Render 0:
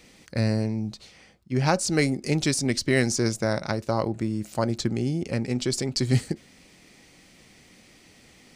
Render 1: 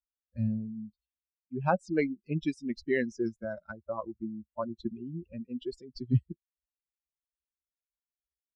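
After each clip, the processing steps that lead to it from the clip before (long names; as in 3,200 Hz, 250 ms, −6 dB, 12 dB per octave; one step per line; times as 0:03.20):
spectral dynamics exaggerated over time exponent 3
low-pass filter 1,900 Hz 12 dB per octave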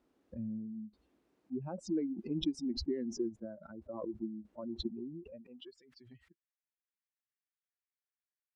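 downward compressor 3 to 1, threshold −31 dBFS, peak gain reduction 9.5 dB
band-pass filter sweep 300 Hz → 1,800 Hz, 0:04.99–0:05.83
background raised ahead of every attack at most 42 dB per second
level +1.5 dB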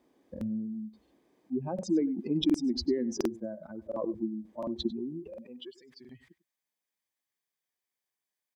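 notch comb filter 1,400 Hz
single-tap delay 97 ms −18 dB
regular buffer underruns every 0.71 s, samples 2,048, repeat, from 0:00.32
level +7.5 dB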